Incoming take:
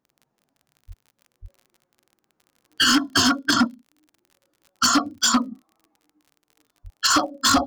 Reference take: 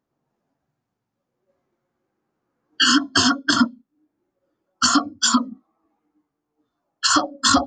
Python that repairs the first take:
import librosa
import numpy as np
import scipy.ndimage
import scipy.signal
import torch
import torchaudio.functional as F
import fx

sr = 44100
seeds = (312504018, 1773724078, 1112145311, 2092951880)

y = fx.fix_declip(x, sr, threshold_db=-12.5)
y = fx.fix_declick_ar(y, sr, threshold=6.5)
y = fx.highpass(y, sr, hz=140.0, slope=24, at=(0.87, 0.99), fade=0.02)
y = fx.highpass(y, sr, hz=140.0, slope=24, at=(1.41, 1.53), fade=0.02)
y = fx.highpass(y, sr, hz=140.0, slope=24, at=(6.83, 6.95), fade=0.02)